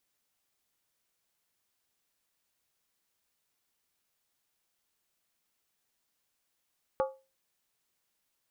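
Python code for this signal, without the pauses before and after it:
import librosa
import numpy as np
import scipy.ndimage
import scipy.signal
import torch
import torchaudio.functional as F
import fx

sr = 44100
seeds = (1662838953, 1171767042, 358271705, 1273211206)

y = fx.strike_skin(sr, length_s=0.63, level_db=-23.0, hz=532.0, decay_s=0.3, tilt_db=5.0, modes=5)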